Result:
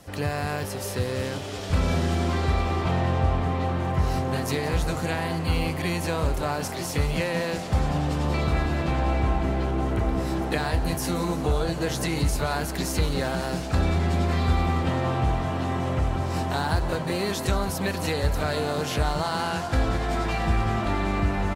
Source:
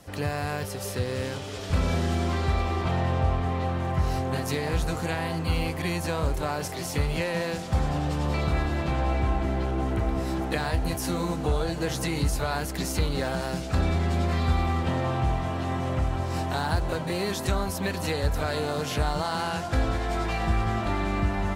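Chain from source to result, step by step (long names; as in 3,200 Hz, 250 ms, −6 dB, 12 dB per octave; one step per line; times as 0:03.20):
echo with shifted repeats 177 ms, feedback 65%, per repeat +95 Hz, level −16 dB
level +1.5 dB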